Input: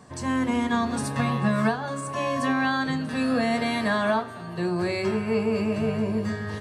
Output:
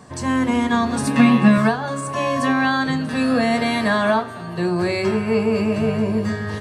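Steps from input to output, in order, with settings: 1.07–1.58 fifteen-band EQ 100 Hz -12 dB, 250 Hz +12 dB, 2500 Hz +8 dB; gain +5.5 dB

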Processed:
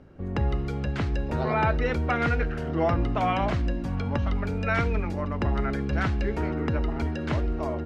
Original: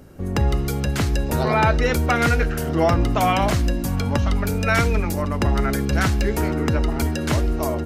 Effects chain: LPF 3000 Hz 12 dB/oct; gain -6 dB

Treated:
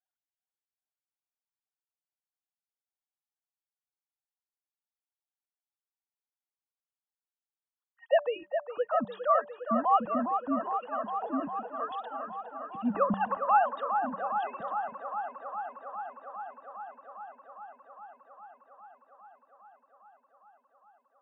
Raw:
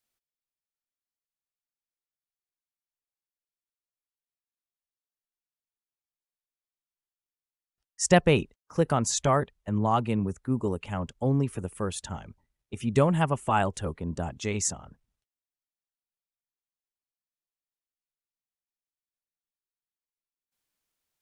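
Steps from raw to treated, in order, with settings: sine-wave speech; fixed phaser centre 940 Hz, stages 4; de-hum 194.9 Hz, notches 3; on a send: band-limited delay 0.407 s, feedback 80%, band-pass 1000 Hz, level -6.5 dB

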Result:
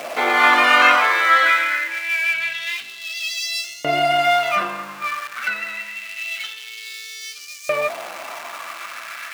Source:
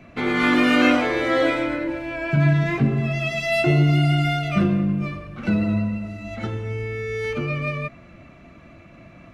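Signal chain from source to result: zero-crossing step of -32.5 dBFS; LFO high-pass saw up 0.26 Hz 590–6100 Hz; gain +5 dB

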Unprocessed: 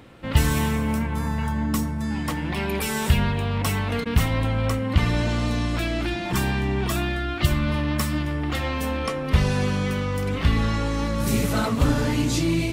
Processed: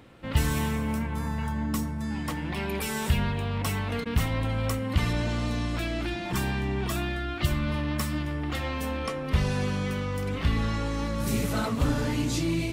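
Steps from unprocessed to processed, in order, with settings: in parallel at -10 dB: soft clip -14 dBFS, distortion -16 dB; 4.49–5.13 on the sum: high shelf 6100 Hz +8 dB; gain -7 dB

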